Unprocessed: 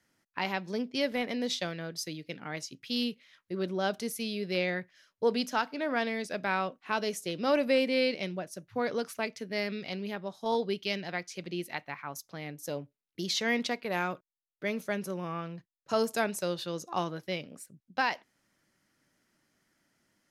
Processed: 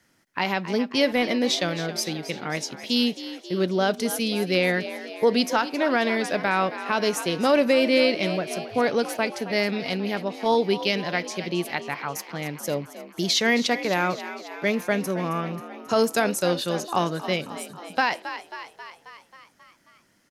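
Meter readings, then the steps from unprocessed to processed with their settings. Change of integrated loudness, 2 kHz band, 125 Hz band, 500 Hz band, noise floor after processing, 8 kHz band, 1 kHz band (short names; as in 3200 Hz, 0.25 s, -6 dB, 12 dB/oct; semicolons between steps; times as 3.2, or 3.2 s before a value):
+8.5 dB, +8.0 dB, +9.0 dB, +8.5 dB, -59 dBFS, +9.0 dB, +8.0 dB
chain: frequency-shifting echo 0.269 s, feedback 63%, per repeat +54 Hz, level -14 dB; maximiser +18 dB; gain -9 dB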